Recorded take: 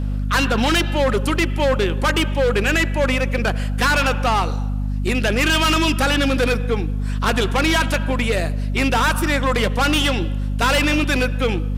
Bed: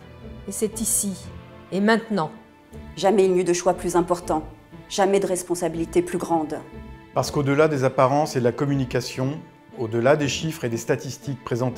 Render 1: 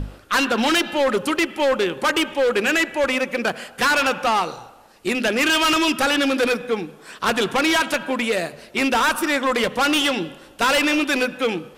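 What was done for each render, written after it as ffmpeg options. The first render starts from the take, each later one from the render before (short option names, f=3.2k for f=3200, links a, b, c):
-af "bandreject=f=50:t=h:w=6,bandreject=f=100:t=h:w=6,bandreject=f=150:t=h:w=6,bandreject=f=200:t=h:w=6,bandreject=f=250:t=h:w=6"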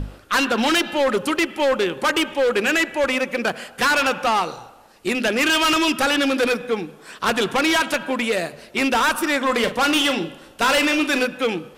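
-filter_complex "[0:a]asettb=1/sr,asplit=3[a][b][c];[a]atrim=end=9.374[d];[b]atrim=start=9.37:end=11.27,asetpts=PTS-STARTPTS,afade=t=in:d=0.004:c=qsin,afade=t=out:st=1.896:d=0.004:c=qsin,asplit=2[e][f];[f]adelay=42,volume=-10.5dB[g];[e][g]amix=inputs=2:normalize=0,atrim=end_sample=83790[h];[c]atrim=start=11.266[i];[d][h]acrossfade=d=0.004:c1=hsin:c2=qsin[j];[j][i]acrossfade=d=0.004:c1=qsin:c2=hsin"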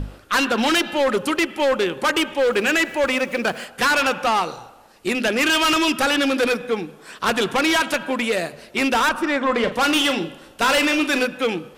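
-filter_complex "[0:a]asettb=1/sr,asplit=3[a][b][c];[a]atrim=end=2.414[d];[b]atrim=start=2.41:end=3.65,asetpts=PTS-STARTPTS,afade=t=in:d=0.004:c=qsin,afade=t=out:st=1.236:d=0.004:c=qsin,aeval=exprs='val(0)+0.5*0.00944*sgn(val(0))':c=same[e];[c]atrim=start=3.646[f];[d][e]acrossfade=d=0.004:c1=hsin:c2=qsin[g];[g][f]acrossfade=d=0.004:c1=qsin:c2=hsin,asettb=1/sr,asplit=3[h][i][j];[h]atrim=end=9.094[k];[i]atrim=start=9.09:end=9.72,asetpts=PTS-STARTPTS,afade=t=in:d=0.004:c=qsin,afade=t=out:st=0.626:d=0.004:c=qsin,aemphasis=mode=reproduction:type=75fm[l];[j]atrim=start=9.716[m];[k][l]acrossfade=d=0.004:c1=hsin:c2=qsin[n];[n][m]acrossfade=d=0.004:c1=qsin:c2=hsin"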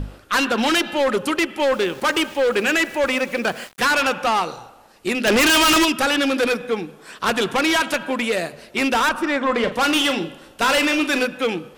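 -filter_complex "[0:a]asettb=1/sr,asplit=3[a][b][c];[a]atrim=end=1.734[d];[b]atrim=start=1.73:end=3.94,asetpts=PTS-STARTPTS,afade=t=in:d=0.004:c=qsin,afade=t=out:st=2.206:d=0.004:c=qsin,aeval=exprs='val(0)*gte(abs(val(0)),0.015)':c=same[e];[c]atrim=start=3.936[f];[d][e]acrossfade=d=0.004:c1=hsin:c2=qsin[g];[g][f]acrossfade=d=0.004:c1=qsin:c2=hsin,asplit=3[h][i][j];[h]afade=t=out:st=5.26:d=0.02[k];[i]aeval=exprs='0.237*sin(PI/2*2*val(0)/0.237)':c=same,afade=t=in:st=5.26:d=0.02,afade=t=out:st=5.84:d=0.02[l];[j]afade=t=in:st=5.84:d=0.02[m];[k][l][m]amix=inputs=3:normalize=0"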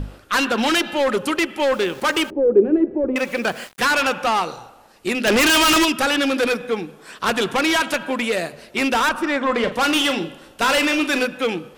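-filter_complex "[0:a]asettb=1/sr,asplit=3[a][b][c];[a]atrim=end=2.304[d];[b]atrim=start=2.3:end=3.16,asetpts=PTS-STARTPTS,afade=t=in:d=0.004:c=qsin,afade=t=out:st=0.856:d=0.004:c=qsin,lowpass=f=380:t=q:w=3.6[e];[c]atrim=start=3.156[f];[d][e]acrossfade=d=0.004:c1=hsin:c2=qsin[g];[g][f]acrossfade=d=0.004:c1=qsin:c2=hsin"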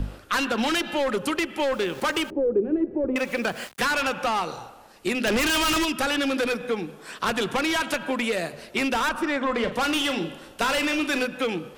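-filter_complex "[0:a]acrossover=split=150[a][b];[b]acompressor=threshold=-24dB:ratio=2.5[c];[a][c]amix=inputs=2:normalize=0"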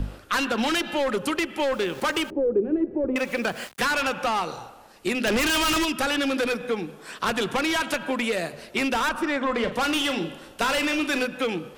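-af anull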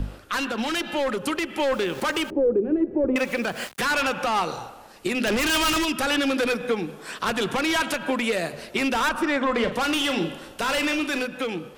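-af "alimiter=limit=-17.5dB:level=0:latency=1:release=169,dynaudnorm=f=280:g=9:m=3.5dB"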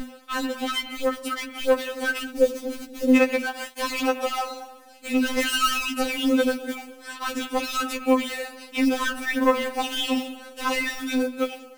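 -af "acrusher=bits=4:mode=log:mix=0:aa=0.000001,afftfilt=real='re*3.46*eq(mod(b,12),0)':imag='im*3.46*eq(mod(b,12),0)':win_size=2048:overlap=0.75"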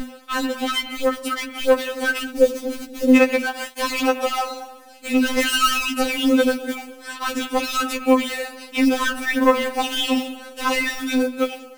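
-af "volume=4dB"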